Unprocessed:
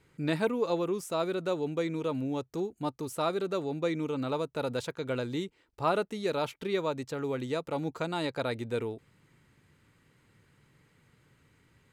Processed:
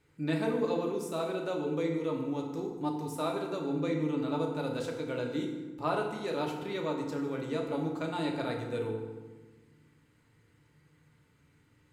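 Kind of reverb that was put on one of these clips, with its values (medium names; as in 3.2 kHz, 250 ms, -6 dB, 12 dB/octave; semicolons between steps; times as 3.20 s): FDN reverb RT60 1.3 s, low-frequency decay 1.45×, high-frequency decay 0.65×, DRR 0 dB; trim -5.5 dB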